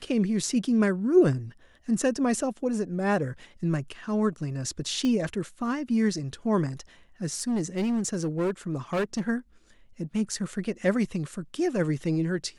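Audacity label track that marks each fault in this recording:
5.050000	5.050000	pop -18 dBFS
7.340000	9.210000	clipped -23 dBFS

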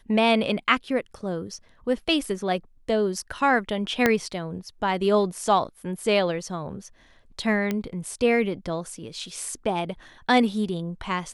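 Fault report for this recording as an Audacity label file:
4.060000	4.060000	pop -5 dBFS
7.710000	7.710000	pop -13 dBFS

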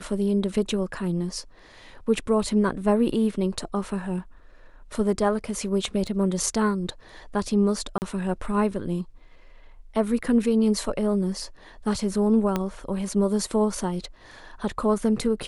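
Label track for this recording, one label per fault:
6.070000	6.070000	gap 3.6 ms
7.980000	8.020000	gap 39 ms
12.560000	12.560000	pop -11 dBFS

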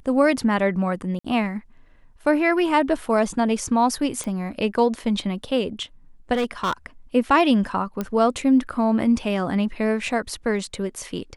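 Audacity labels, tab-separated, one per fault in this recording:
1.190000	1.250000	gap 55 ms
4.240000	4.240000	pop
6.330000	6.730000	clipped -18.5 dBFS
8.010000	8.010000	pop -13 dBFS

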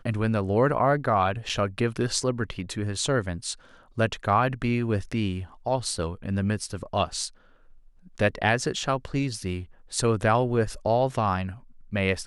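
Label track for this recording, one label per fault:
1.490000	1.500000	gap 6.1 ms

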